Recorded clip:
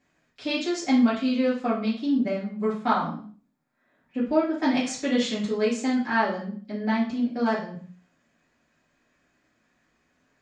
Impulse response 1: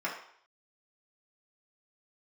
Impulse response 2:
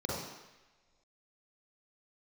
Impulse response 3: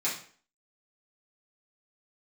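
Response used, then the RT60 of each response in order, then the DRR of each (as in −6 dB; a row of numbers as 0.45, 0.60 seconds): 3; 0.60 s, non-exponential decay, 0.45 s; −5.5, −5.5, −9.5 decibels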